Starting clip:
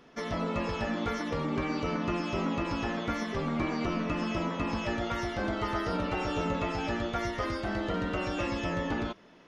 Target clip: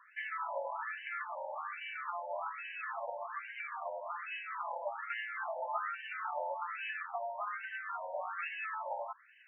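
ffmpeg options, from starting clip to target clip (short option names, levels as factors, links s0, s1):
-af "alimiter=level_in=1.06:limit=0.0631:level=0:latency=1:release=394,volume=0.944,afftfilt=real='re*between(b*sr/1024,690*pow(2200/690,0.5+0.5*sin(2*PI*1.2*pts/sr))/1.41,690*pow(2200/690,0.5+0.5*sin(2*PI*1.2*pts/sr))*1.41)':imag='im*between(b*sr/1024,690*pow(2200/690,0.5+0.5*sin(2*PI*1.2*pts/sr))/1.41,690*pow(2200/690,0.5+0.5*sin(2*PI*1.2*pts/sr))*1.41)':win_size=1024:overlap=0.75,volume=1.58"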